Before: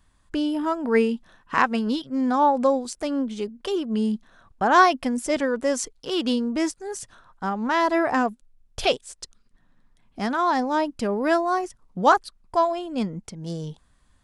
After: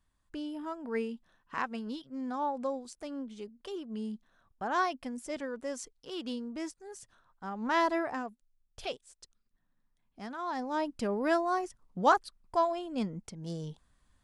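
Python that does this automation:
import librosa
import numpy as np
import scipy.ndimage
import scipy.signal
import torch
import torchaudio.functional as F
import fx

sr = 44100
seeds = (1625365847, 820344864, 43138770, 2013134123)

y = fx.gain(x, sr, db=fx.line((7.44, -14.0), (7.78, -5.0), (8.23, -16.0), (10.37, -16.0), (10.91, -7.0)))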